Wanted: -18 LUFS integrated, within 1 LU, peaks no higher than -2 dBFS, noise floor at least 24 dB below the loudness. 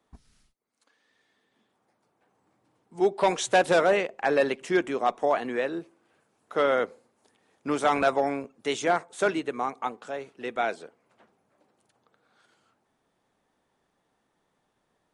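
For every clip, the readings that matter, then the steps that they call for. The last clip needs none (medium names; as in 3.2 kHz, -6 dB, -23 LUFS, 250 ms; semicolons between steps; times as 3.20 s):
loudness -26.5 LUFS; peak level -11.5 dBFS; loudness target -18.0 LUFS
-> trim +8.5 dB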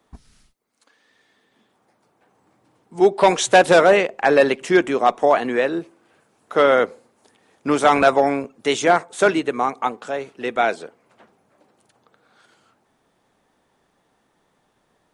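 loudness -18.0 LUFS; peak level -3.0 dBFS; noise floor -66 dBFS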